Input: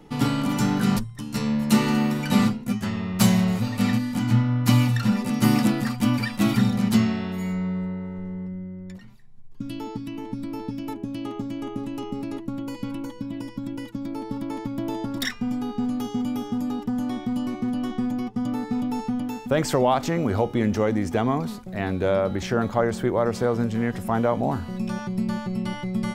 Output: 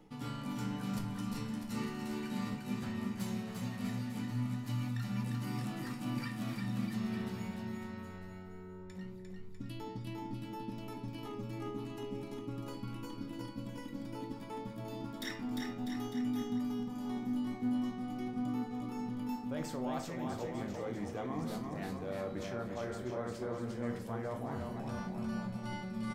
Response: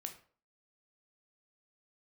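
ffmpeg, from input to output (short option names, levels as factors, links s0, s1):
-filter_complex "[0:a]areverse,acompressor=threshold=0.0251:ratio=6,areverse,aecho=1:1:350|647.5|900.4|1115|1298:0.631|0.398|0.251|0.158|0.1[s0];[1:a]atrim=start_sample=2205[s1];[s0][s1]afir=irnorm=-1:irlink=0,volume=0.708"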